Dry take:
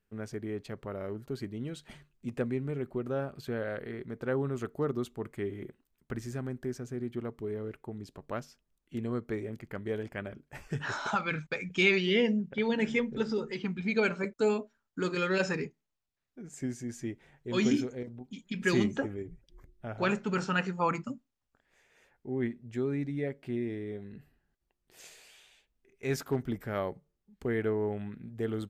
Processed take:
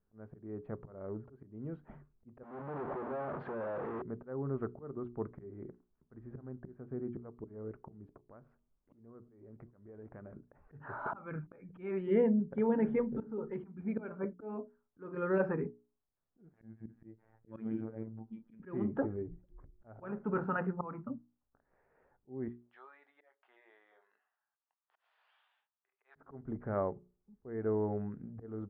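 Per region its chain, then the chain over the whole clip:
0:02.43–0:04.02: sign of each sample alone + high-pass filter 340 Hz 6 dB per octave + high-shelf EQ 5,900 Hz +7 dB
0:08.27–0:10.34: downward compressor 5 to 1, threshold −45 dBFS + single-tap delay 591 ms −22 dB
0:16.53–0:18.60: parametric band 3,500 Hz +2.5 dB 2.5 octaves + phases set to zero 111 Hz
0:22.48–0:26.16: high-pass filter 920 Hz 24 dB per octave + flat-topped bell 4,100 Hz +15 dB 1.2 octaves + double-tracking delay 23 ms −11 dB
whole clip: volume swells 346 ms; low-pass filter 1,300 Hz 24 dB per octave; mains-hum notches 60/120/180/240/300/360/420 Hz

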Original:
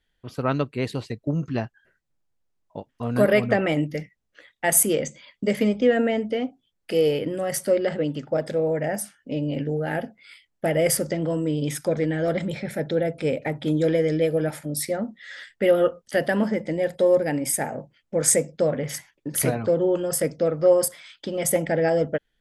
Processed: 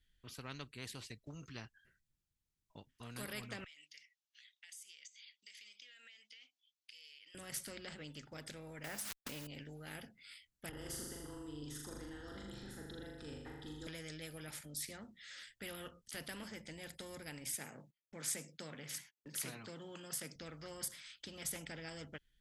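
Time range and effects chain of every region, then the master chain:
0:03.64–0:07.35: flat-topped band-pass 4,100 Hz, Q 0.97 + downward compressor 10 to 1, threshold −46 dBFS
0:08.84–0:09.47: bit-depth reduction 8 bits, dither none + parametric band 1,100 Hz +12 dB 2.4 octaves + background raised ahead of every attack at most 48 dB per second
0:10.69–0:13.87: RIAA equalisation playback + phaser with its sweep stopped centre 610 Hz, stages 6 + flutter between parallel walls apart 6.9 metres, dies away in 0.77 s
0:17.57–0:20.36: high-pass filter 140 Hz 24 dB per octave + noise gate −57 dBFS, range −30 dB
whole clip: guitar amp tone stack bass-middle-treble 6-0-2; every bin compressed towards the loudest bin 2 to 1

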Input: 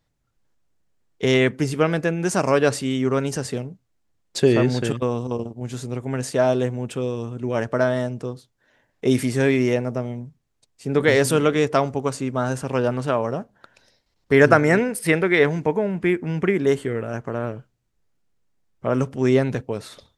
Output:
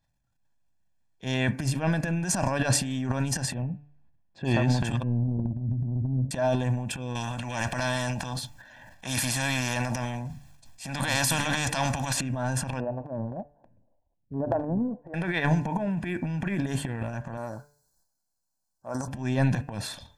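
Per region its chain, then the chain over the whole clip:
0:03.54–0:04.45: low-pass filter 2,500 Hz + tilt shelving filter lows +3.5 dB, about 680 Hz
0:05.03–0:06.31: inverse Chebyshev low-pass filter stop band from 1,800 Hz, stop band 70 dB + low-shelf EQ 260 Hz +9 dB
0:07.15–0:12.21: parametric band 400 Hz −14.5 dB 0.22 octaves + every bin compressed towards the loudest bin 2 to 1
0:12.80–0:15.14: inverse Chebyshev low-pass filter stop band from 3,900 Hz, stop band 80 dB + phaser with staggered stages 1.9 Hz
0:17.37–0:19.08: Chebyshev band-stop filter 1,500–4,200 Hz, order 3 + bass and treble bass −13 dB, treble +11 dB
whole clip: transient designer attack −8 dB, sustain +11 dB; comb filter 1.2 ms, depth 77%; hum removal 145.9 Hz, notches 20; level −7.5 dB

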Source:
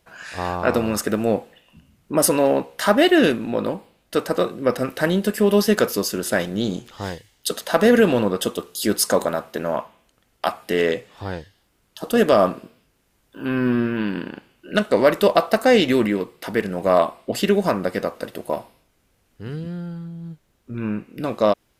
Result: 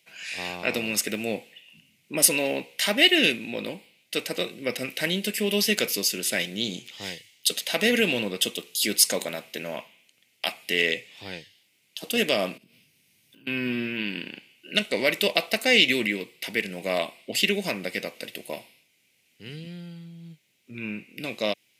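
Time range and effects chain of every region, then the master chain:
0:12.57–0:13.47: notch filter 7,300 Hz, Q 7.5 + downward compressor 8 to 1, threshold −49 dBFS + bass and treble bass +11 dB, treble +4 dB
whole clip: high-pass filter 120 Hz 24 dB per octave; high shelf with overshoot 1,700 Hz +10.5 dB, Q 3; notch filter 1,700 Hz, Q 14; level −9 dB

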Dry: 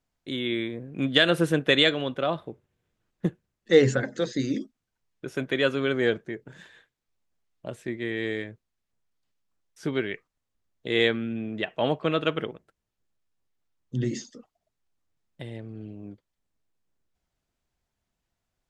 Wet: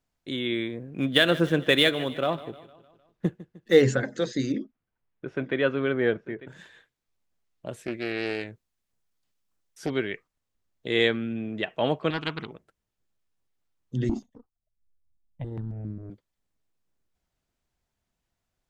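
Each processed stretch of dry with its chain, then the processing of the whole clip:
0:00.85–0:03.82: running median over 5 samples + repeating echo 153 ms, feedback 54%, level −18 dB
0:04.52–0:06.47: low-pass filter 2,300 Hz + single-tap delay 897 ms −18 dB
0:07.72–0:09.90: high-shelf EQ 5,700 Hz +5.5 dB + highs frequency-modulated by the lows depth 0.45 ms
0:12.10–0:12.51: phaser with its sweep stopped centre 2,600 Hz, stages 8 + highs frequency-modulated by the lows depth 0.38 ms
0:14.09–0:16.10: spectral tilt −4.5 dB per octave + power curve on the samples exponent 1.4 + step-sequenced phaser 7.4 Hz 490–2,900 Hz
whole clip: no processing

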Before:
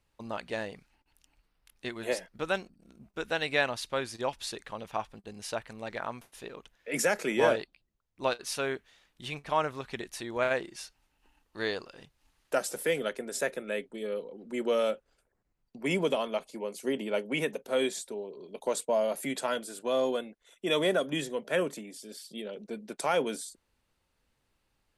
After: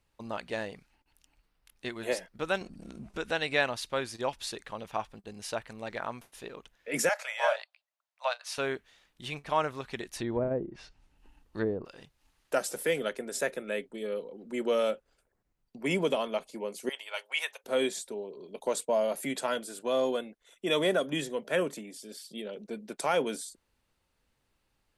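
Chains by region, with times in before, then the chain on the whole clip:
0:02.61–0:03.60: low-pass filter 11,000 Hz 24 dB per octave + upward compression, threshold −32 dBFS
0:07.09–0:08.58: Butterworth high-pass 570 Hz 72 dB per octave + high-shelf EQ 8,000 Hz −9.5 dB
0:10.16–0:11.85: treble cut that deepens with the level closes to 490 Hz, closed at −29 dBFS + low-shelf EQ 360 Hz +10.5 dB
0:16.89–0:17.64: high-pass filter 820 Hz 24 dB per octave + dynamic equaliser 3,900 Hz, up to +6 dB, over −48 dBFS, Q 1.3
whole clip: no processing

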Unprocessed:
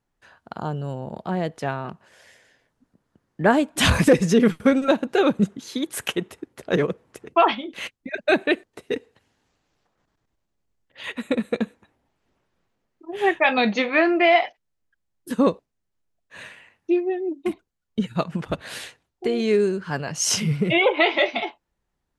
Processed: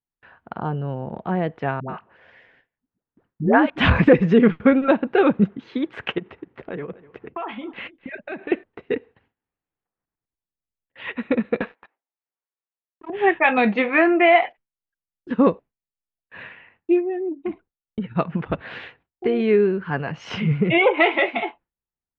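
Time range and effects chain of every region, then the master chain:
0:01.80–0:03.70: high-shelf EQ 9,000 Hz +3 dB + all-pass dispersion highs, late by 93 ms, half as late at 520 Hz
0:06.18–0:08.52: low-pass filter 5,700 Hz + downward compressor, threshold −30 dBFS + single-tap delay 250 ms −19.5 dB
0:11.61–0:13.10: band-pass filter 630–7,000 Hz + leveller curve on the samples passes 3
0:17.01–0:18.17: low-pass filter 2,700 Hz 6 dB per octave + downward compressor 2.5 to 1, threshold −26 dBFS
whole clip: low-pass filter 2,700 Hz 24 dB per octave; notch filter 600 Hz, Q 12; noise gate with hold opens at −49 dBFS; level +2.5 dB

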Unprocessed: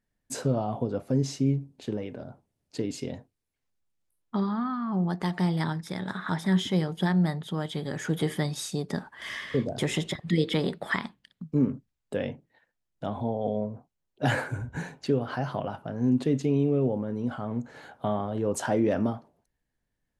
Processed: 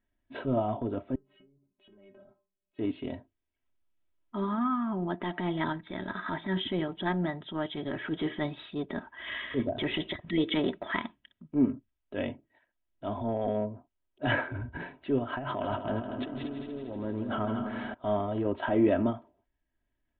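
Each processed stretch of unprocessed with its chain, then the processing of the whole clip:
0:01.15–0:02.79: treble cut that deepens with the level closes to 890 Hz, closed at −21 dBFS + downward compressor 16 to 1, threshold −37 dBFS + stiff-string resonator 190 Hz, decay 0.25 s, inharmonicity 0.008
0:15.38–0:17.94: compressor whose output falls as the input rises −35 dBFS + echo machine with several playback heads 79 ms, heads second and third, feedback 60%, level −9.5 dB
whole clip: transient designer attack −8 dB, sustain −3 dB; Butterworth low-pass 3,600 Hz 96 dB per octave; comb filter 3.1 ms, depth 64%

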